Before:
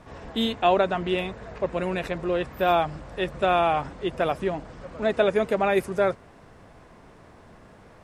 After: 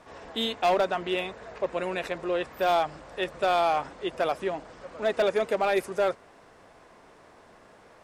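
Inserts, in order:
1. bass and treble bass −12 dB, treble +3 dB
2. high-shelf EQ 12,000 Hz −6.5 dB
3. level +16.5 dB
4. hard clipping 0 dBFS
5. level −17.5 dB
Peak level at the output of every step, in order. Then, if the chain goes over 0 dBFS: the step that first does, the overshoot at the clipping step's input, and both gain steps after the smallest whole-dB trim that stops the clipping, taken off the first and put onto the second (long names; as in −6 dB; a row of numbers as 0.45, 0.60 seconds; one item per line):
−8.0, −8.0, +8.5, 0.0, −17.5 dBFS
step 3, 8.5 dB
step 3 +7.5 dB, step 5 −8.5 dB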